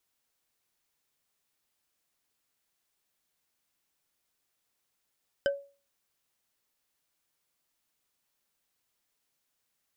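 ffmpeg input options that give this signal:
-f lavfi -i "aevalsrc='0.0891*pow(10,-3*t/0.36)*sin(2*PI*561*t)+0.0501*pow(10,-3*t/0.107)*sin(2*PI*1546.7*t)+0.0282*pow(10,-3*t/0.048)*sin(2*PI*3031.6*t)+0.0158*pow(10,-3*t/0.026)*sin(2*PI*5011.4*t)+0.00891*pow(10,-3*t/0.016)*sin(2*PI*7483.7*t)':d=0.45:s=44100"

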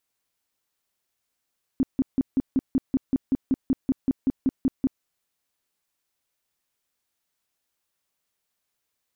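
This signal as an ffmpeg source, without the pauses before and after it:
-f lavfi -i "aevalsrc='0.141*sin(2*PI*265*mod(t,0.19))*lt(mod(t,0.19),8/265)':d=3.23:s=44100"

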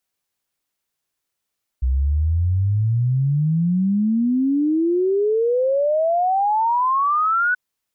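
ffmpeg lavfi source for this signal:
-f lavfi -i "aevalsrc='0.168*clip(min(t,5.73-t)/0.01,0,1)*sin(2*PI*62*5.73/log(1500/62)*(exp(log(1500/62)*t/5.73)-1))':d=5.73:s=44100"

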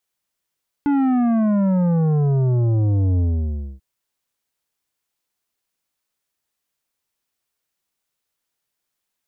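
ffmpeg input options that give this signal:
-f lavfi -i "aevalsrc='0.158*clip((2.94-t)/0.61,0,1)*tanh(3.16*sin(2*PI*290*2.94/log(65/290)*(exp(log(65/290)*t/2.94)-1)))/tanh(3.16)':d=2.94:s=44100"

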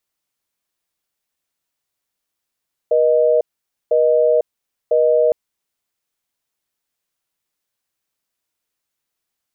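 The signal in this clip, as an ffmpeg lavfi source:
-f lavfi -i "aevalsrc='0.2*(sin(2*PI*480*t)+sin(2*PI*620*t))*clip(min(mod(t,1),0.5-mod(t,1))/0.005,0,1)':d=2.41:s=44100"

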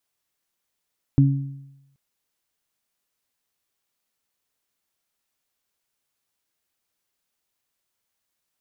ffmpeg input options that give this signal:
-f lavfi -i "aevalsrc='0.282*pow(10,-3*t/0.91)*sin(2*PI*138*t)+0.168*pow(10,-3*t/0.66)*sin(2*PI*276*t)':d=0.78:s=44100"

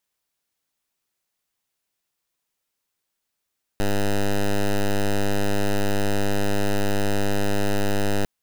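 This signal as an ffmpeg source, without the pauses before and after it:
-f lavfi -i "aevalsrc='0.1*(2*lt(mod(101*t,1),0.09)-1)':d=4.45:s=44100"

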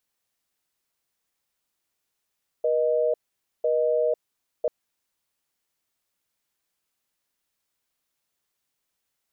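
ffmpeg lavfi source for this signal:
-f lavfi -i "aevalsrc='0.075*(sin(2*PI*480*t)+sin(2*PI*620*t))*clip(min(mod(t,1),0.5-mod(t,1))/0.005,0,1)':d=2.04:s=44100"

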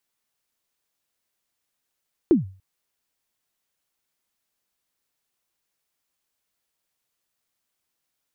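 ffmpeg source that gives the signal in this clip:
-f lavfi -i "aevalsrc='0.355*pow(10,-3*t/0.38)*sin(2*PI*(380*0.14/log(95/380)*(exp(log(95/380)*min(t,0.14)/0.14)-1)+95*max(t-0.14,0)))':d=0.29:s=44100"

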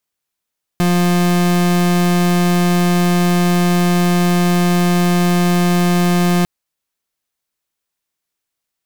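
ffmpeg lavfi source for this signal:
-f lavfi -i "aevalsrc='0.211*(2*lt(mod(176*t,1),0.37)-1)':d=5.65:s=44100"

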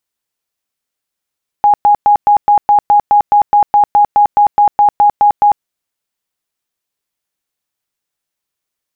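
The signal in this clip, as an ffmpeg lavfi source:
-f lavfi -i "aevalsrc='0.596*sin(2*PI*826*mod(t,0.21))*lt(mod(t,0.21),81/826)':d=3.99:s=44100"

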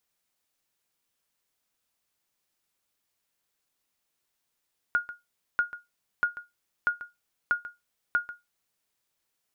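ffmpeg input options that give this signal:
-f lavfi -i "aevalsrc='0.158*(sin(2*PI*1430*mod(t,0.64))*exp(-6.91*mod(t,0.64)/0.19)+0.178*sin(2*PI*1430*max(mod(t,0.64)-0.14,0))*exp(-6.91*max(mod(t,0.64)-0.14,0)/0.19))':d=3.84:s=44100"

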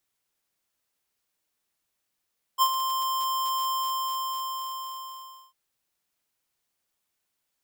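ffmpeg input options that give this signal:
-f lavfi -i "aevalsrc='0.119*(2*lt(mod(1050*t,1),0.5)-1)':d=2.95:s=44100,afade=t=in:d=0.04,afade=t=out:st=0.04:d=0.063:silence=0.355,afade=t=out:st=1.11:d=1.84"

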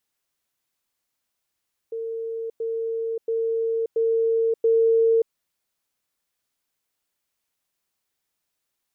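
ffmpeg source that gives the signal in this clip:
-f lavfi -i "aevalsrc='pow(10,(-27+3*floor(t/0.68))/20)*sin(2*PI*454*t)*clip(min(mod(t,0.68),0.58-mod(t,0.68))/0.005,0,1)':d=3.4:s=44100"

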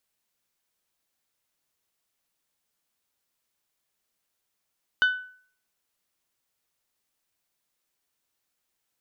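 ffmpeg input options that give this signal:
-f lavfi -i "aevalsrc='0.178*pow(10,-3*t/0.51)*sin(2*PI*1500*t)+0.0596*pow(10,-3*t/0.314)*sin(2*PI*3000*t)+0.02*pow(10,-3*t/0.276)*sin(2*PI*3600*t)+0.00668*pow(10,-3*t/0.236)*sin(2*PI*4500*t)+0.00224*pow(10,-3*t/0.193)*sin(2*PI*6000*t)':d=0.89:s=44100"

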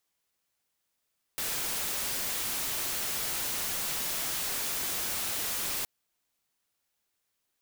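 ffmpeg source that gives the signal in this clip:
-f lavfi -i "anoisesrc=c=white:a=0.0411:d=4.47:r=44100:seed=1"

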